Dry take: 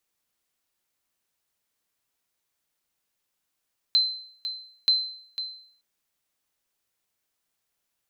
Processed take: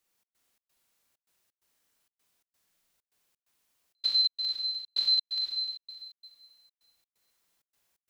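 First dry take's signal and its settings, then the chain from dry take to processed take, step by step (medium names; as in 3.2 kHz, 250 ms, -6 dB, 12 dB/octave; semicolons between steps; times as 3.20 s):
sonar ping 4.08 kHz, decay 0.60 s, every 0.93 s, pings 2, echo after 0.50 s, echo -11.5 dB -14 dBFS
Schroeder reverb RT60 2.1 s, combs from 33 ms, DRR -3 dB; trance gate "xx.xx.xx" 130 bpm -60 dB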